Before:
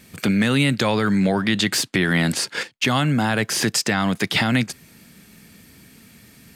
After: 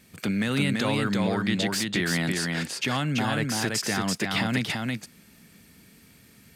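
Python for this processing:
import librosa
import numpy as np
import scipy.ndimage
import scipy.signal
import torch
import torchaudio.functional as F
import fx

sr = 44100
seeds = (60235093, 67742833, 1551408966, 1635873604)

y = x + 10.0 ** (-3.0 / 20.0) * np.pad(x, (int(335 * sr / 1000.0), 0))[:len(x)]
y = F.gain(torch.from_numpy(y), -7.5).numpy()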